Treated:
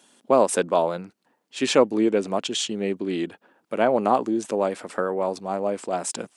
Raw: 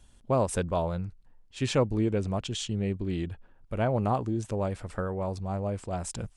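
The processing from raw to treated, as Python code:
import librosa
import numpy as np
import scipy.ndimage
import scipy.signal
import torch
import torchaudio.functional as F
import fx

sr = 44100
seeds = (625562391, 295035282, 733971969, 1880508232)

y = scipy.signal.sosfilt(scipy.signal.butter(4, 240.0, 'highpass', fs=sr, output='sos'), x)
y = F.gain(torch.from_numpy(y), 8.5).numpy()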